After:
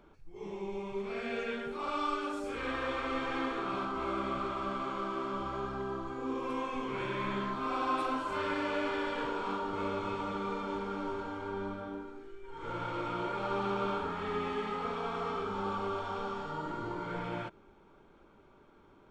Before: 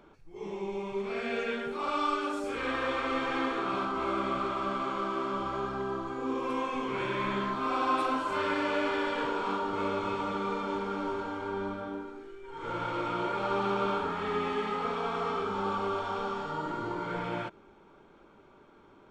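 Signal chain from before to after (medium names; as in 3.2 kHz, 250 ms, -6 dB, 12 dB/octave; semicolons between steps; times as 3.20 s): bass shelf 95 Hz +8 dB; trim -4 dB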